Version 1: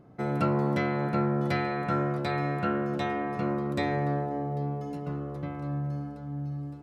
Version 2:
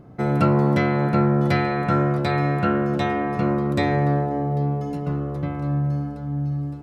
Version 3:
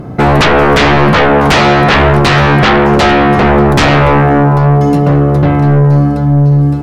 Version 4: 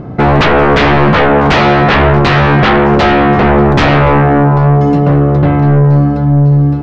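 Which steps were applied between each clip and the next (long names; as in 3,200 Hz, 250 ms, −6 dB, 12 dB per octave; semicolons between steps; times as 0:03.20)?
low-shelf EQ 120 Hz +7 dB; level +6.5 dB
sine wavefolder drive 14 dB, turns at −7 dBFS; level +3 dB
high-frequency loss of the air 140 metres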